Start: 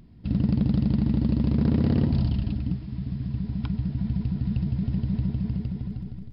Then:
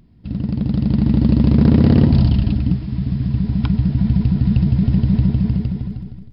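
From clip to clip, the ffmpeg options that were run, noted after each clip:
ffmpeg -i in.wav -af "dynaudnorm=framelen=260:gausssize=7:maxgain=11.5dB" out.wav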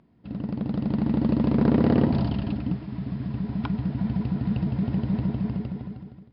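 ffmpeg -i in.wav -af "bandpass=frequency=820:width_type=q:width=0.6:csg=0" out.wav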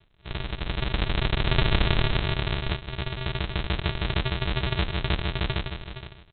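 ffmpeg -i in.wav -af "aresample=8000,acrusher=samples=31:mix=1:aa=0.000001,aresample=44100,crystalizer=i=7.5:c=0,volume=-1.5dB" out.wav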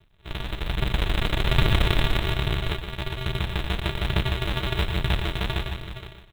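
ffmpeg -i in.wav -filter_complex "[0:a]acrusher=bits=5:mode=log:mix=0:aa=0.000001,aphaser=in_gain=1:out_gain=1:delay=4.4:decay=0.3:speed=1.2:type=triangular,asplit=2[link_01][link_02];[link_02]aecho=0:1:119:0.335[link_03];[link_01][link_03]amix=inputs=2:normalize=0" out.wav

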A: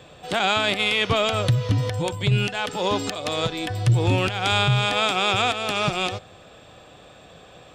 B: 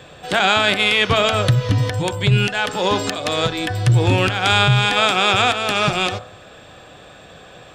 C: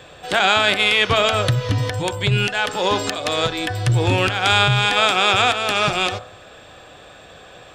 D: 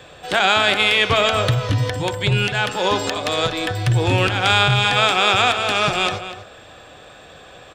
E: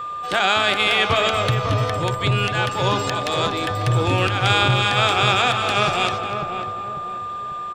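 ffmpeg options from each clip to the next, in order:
ffmpeg -i in.wav -af "equalizer=frequency=1600:width_type=o:width=0.42:gain=5,bandreject=frequency=56:width_type=h:width=4,bandreject=frequency=112:width_type=h:width=4,bandreject=frequency=168:width_type=h:width=4,bandreject=frequency=224:width_type=h:width=4,bandreject=frequency=280:width_type=h:width=4,bandreject=frequency=336:width_type=h:width=4,bandreject=frequency=392:width_type=h:width=4,bandreject=frequency=448:width_type=h:width=4,bandreject=frequency=504:width_type=h:width=4,bandreject=frequency=560:width_type=h:width=4,bandreject=frequency=616:width_type=h:width=4,bandreject=frequency=672:width_type=h:width=4,bandreject=frequency=728:width_type=h:width=4,bandreject=frequency=784:width_type=h:width=4,bandreject=frequency=840:width_type=h:width=4,bandreject=frequency=896:width_type=h:width=4,bandreject=frequency=952:width_type=h:width=4,bandreject=frequency=1008:width_type=h:width=4,bandreject=frequency=1064:width_type=h:width=4,bandreject=frequency=1120:width_type=h:width=4,bandreject=frequency=1176:width_type=h:width=4,bandreject=frequency=1232:width_type=h:width=4,bandreject=frequency=1288:width_type=h:width=4,bandreject=frequency=1344:width_type=h:width=4,bandreject=frequency=1400:width_type=h:width=4,bandreject=frequency=1456:width_type=h:width=4,bandreject=frequency=1512:width_type=h:width=4,bandreject=frequency=1568:width_type=h:width=4,volume=5dB" out.wav
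ffmpeg -i in.wav -af "equalizer=frequency=170:width=0.94:gain=-5" out.wav
ffmpeg -i in.wav -filter_complex "[0:a]acrossover=split=440|6000[link_01][link_02][link_03];[link_03]asoftclip=type=tanh:threshold=-25.5dB[link_04];[link_01][link_02][link_04]amix=inputs=3:normalize=0,asplit=2[link_05][link_06];[link_06]adelay=244.9,volume=-11dB,highshelf=frequency=4000:gain=-5.51[link_07];[link_05][link_07]amix=inputs=2:normalize=0" out.wav
ffmpeg -i in.wav -filter_complex "[0:a]asplit=2[link_01][link_02];[link_02]adelay=545,lowpass=frequency=990:poles=1,volume=-4.5dB,asplit=2[link_03][link_04];[link_04]adelay=545,lowpass=frequency=990:poles=1,volume=0.46,asplit=2[link_05][link_06];[link_06]adelay=545,lowpass=frequency=990:poles=1,volume=0.46,asplit=2[link_07][link_08];[link_08]adelay=545,lowpass=frequency=990:poles=1,volume=0.46,asplit=2[link_09][link_10];[link_10]adelay=545,lowpass=frequency=990:poles=1,volume=0.46,asplit=2[link_11][link_12];[link_12]adelay=545,lowpass=frequency=990:poles=1,volume=0.46[link_13];[link_01][link_03][link_05][link_07][link_09][link_11][link_13]amix=inputs=7:normalize=0,aeval=exprs='val(0)+0.0631*sin(2*PI*1200*n/s)':channel_layout=same,volume=-2.5dB" out.wav

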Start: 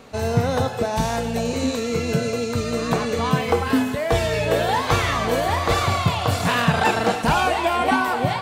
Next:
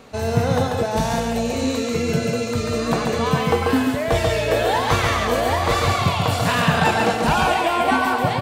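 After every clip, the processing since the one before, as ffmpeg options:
ffmpeg -i in.wav -af "aecho=1:1:139:0.631" out.wav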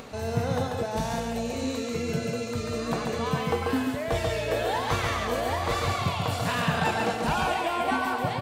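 ffmpeg -i in.wav -af "acompressor=mode=upward:threshold=-26dB:ratio=2.5,volume=-8dB" out.wav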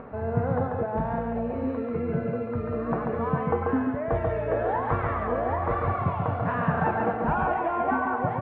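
ffmpeg -i in.wav -af "lowpass=frequency=1600:width=0.5412,lowpass=frequency=1600:width=1.3066,volume=1.5dB" out.wav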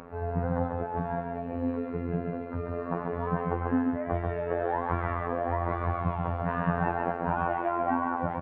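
ffmpeg -i in.wav -filter_complex "[0:a]asplit=2[link_01][link_02];[link_02]adelay=280,highpass=300,lowpass=3400,asoftclip=type=hard:threshold=-22dB,volume=-29dB[link_03];[link_01][link_03]amix=inputs=2:normalize=0,afftfilt=real='hypot(re,im)*cos(PI*b)':imag='0':win_size=2048:overlap=0.75" out.wav

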